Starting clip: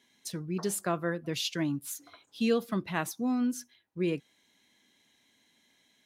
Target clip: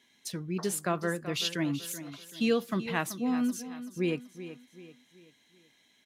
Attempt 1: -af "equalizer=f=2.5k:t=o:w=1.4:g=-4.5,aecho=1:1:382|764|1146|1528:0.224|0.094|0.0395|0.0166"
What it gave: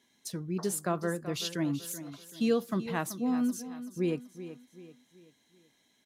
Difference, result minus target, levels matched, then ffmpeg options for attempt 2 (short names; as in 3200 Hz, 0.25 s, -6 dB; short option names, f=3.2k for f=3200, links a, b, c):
2000 Hz band -4.5 dB
-af "equalizer=f=2.5k:t=o:w=1.4:g=3,aecho=1:1:382|764|1146|1528:0.224|0.094|0.0395|0.0166"